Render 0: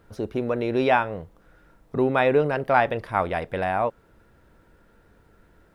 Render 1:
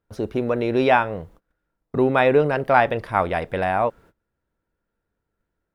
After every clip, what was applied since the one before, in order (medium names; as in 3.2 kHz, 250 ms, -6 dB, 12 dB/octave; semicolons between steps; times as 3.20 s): gate -49 dBFS, range -25 dB; trim +3 dB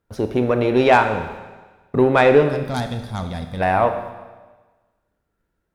Chebyshev shaper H 5 -19 dB, 6 -27 dB, 7 -30 dB, 8 -24 dB, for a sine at -1.5 dBFS; time-frequency box 2.49–3.61 s, 270–3200 Hz -15 dB; Schroeder reverb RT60 1.3 s, combs from 25 ms, DRR 7.5 dB; trim +1 dB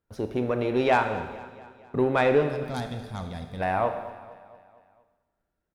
feedback delay 230 ms, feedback 56%, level -18 dB; trim -8 dB